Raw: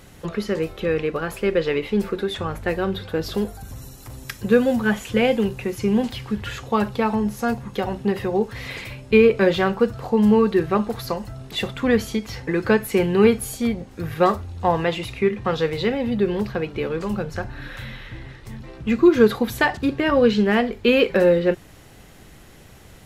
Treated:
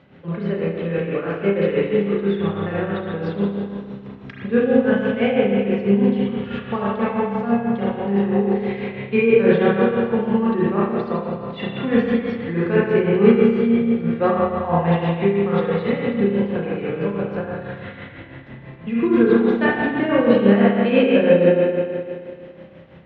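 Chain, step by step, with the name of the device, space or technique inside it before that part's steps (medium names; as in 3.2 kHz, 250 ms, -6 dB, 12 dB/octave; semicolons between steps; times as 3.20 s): combo amplifier with spring reverb and tremolo (spring tank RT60 2.2 s, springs 30/35 ms, chirp 55 ms, DRR -6.5 dB; tremolo 6.1 Hz, depth 54%; cabinet simulation 100–3400 Hz, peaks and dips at 160 Hz +7 dB, 250 Hz +6 dB, 580 Hz +5 dB); trim -5.5 dB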